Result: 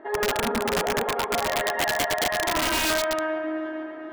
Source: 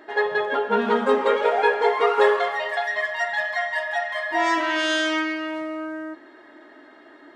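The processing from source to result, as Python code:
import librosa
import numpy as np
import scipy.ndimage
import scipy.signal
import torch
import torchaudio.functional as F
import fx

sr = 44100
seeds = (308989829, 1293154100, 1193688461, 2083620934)

p1 = scipy.signal.sosfilt(scipy.signal.butter(2, 1400.0, 'lowpass', fs=sr, output='sos'), x)
p2 = fx.over_compress(p1, sr, threshold_db=-24.0, ratio=-0.5)
p3 = p2 + fx.echo_split(p2, sr, split_hz=340.0, low_ms=382, high_ms=236, feedback_pct=52, wet_db=-3.5, dry=0)
p4 = fx.stretch_grains(p3, sr, factor=0.56, grain_ms=73.0)
p5 = fx.echo_feedback(p4, sr, ms=446, feedback_pct=51, wet_db=-12.0)
y = (np.mod(10.0 ** (17.5 / 20.0) * p5 + 1.0, 2.0) - 1.0) / 10.0 ** (17.5 / 20.0)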